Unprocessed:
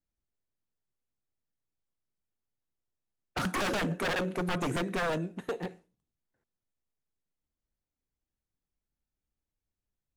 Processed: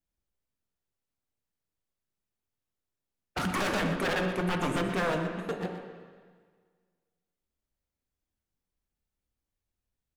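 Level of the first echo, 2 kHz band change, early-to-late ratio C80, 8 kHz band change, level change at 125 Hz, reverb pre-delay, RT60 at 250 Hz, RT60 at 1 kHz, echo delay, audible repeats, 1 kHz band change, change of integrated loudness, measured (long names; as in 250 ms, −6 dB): −11.0 dB, +2.0 dB, 5.5 dB, +0.5 dB, +2.0 dB, 5 ms, 1.7 s, 1.7 s, 122 ms, 1, +2.5 dB, +2.0 dB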